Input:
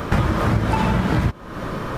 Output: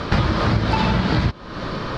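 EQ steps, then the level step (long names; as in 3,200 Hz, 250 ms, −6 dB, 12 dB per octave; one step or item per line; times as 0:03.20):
low-pass with resonance 4,500 Hz, resonance Q 3.4
0.0 dB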